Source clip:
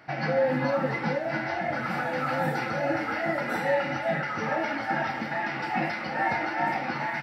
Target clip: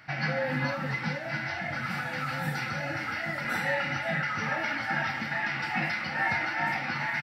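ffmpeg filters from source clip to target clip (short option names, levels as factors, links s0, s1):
-filter_complex "[0:a]firequalizer=gain_entry='entry(100,0);entry(360,-13);entry(1400,-2);entry(2100,0)':delay=0.05:min_phase=1,asettb=1/sr,asplit=3[s0][s1][s2];[s0]atrim=end=0.724[s3];[s1]atrim=start=0.72:end=3.45,asetpts=PTS-STARTPTS,afade=t=in:d=0.004:c=qsin,afade=t=out:st=2.726:d=0.004:c=qsin,acrossover=split=210|3000[s4][s5][s6];[s5]acompressor=threshold=0.02:ratio=6[s7];[s4][s7][s6]amix=inputs=3:normalize=0[s8];[s2]atrim=start=3.446[s9];[s3][s8]acrossfade=d=0.004:c1=hsin:c2=qsin[s10];[s10][s9]acrossfade=d=0.004:c1=qsin:c2=hsin,volume=1.41"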